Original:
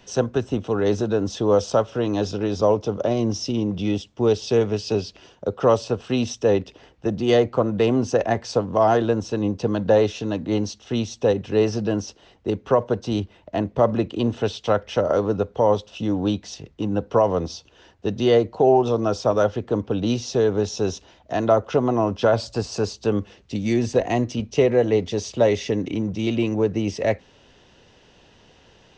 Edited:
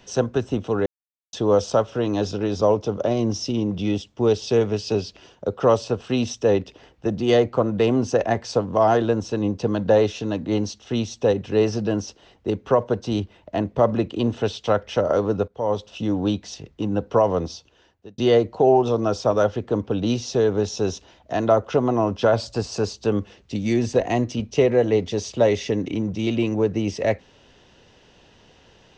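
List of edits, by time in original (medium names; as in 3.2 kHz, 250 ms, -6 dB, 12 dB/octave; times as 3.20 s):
0.86–1.33 s: mute
15.48–15.89 s: fade in, from -16 dB
17.41–18.18 s: fade out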